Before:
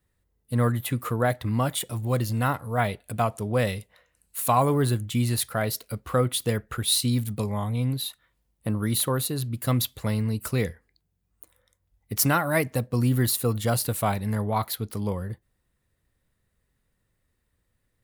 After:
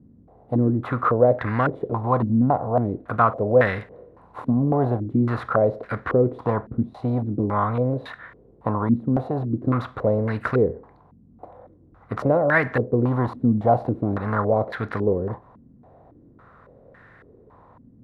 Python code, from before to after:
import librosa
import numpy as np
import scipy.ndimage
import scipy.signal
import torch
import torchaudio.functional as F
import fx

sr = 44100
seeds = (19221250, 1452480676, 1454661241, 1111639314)

y = fx.bin_compress(x, sr, power=0.6)
y = fx.filter_held_lowpass(y, sr, hz=3.6, low_hz=240.0, high_hz=1700.0)
y = F.gain(torch.from_numpy(y), -2.0).numpy()